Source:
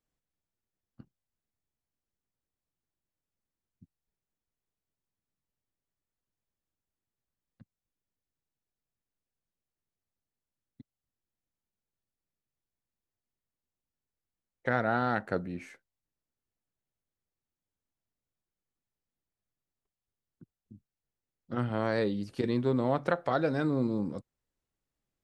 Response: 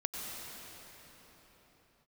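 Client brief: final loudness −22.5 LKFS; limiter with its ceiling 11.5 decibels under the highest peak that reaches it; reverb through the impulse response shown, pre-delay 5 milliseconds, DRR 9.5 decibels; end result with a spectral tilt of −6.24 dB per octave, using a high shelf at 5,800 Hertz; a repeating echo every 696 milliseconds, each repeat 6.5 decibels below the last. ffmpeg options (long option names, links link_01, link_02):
-filter_complex "[0:a]highshelf=frequency=5800:gain=6,alimiter=limit=-23.5dB:level=0:latency=1,aecho=1:1:696|1392|2088|2784|3480|4176:0.473|0.222|0.105|0.0491|0.0231|0.0109,asplit=2[link_01][link_02];[1:a]atrim=start_sample=2205,adelay=5[link_03];[link_02][link_03]afir=irnorm=-1:irlink=0,volume=-12.5dB[link_04];[link_01][link_04]amix=inputs=2:normalize=0,volume=13dB"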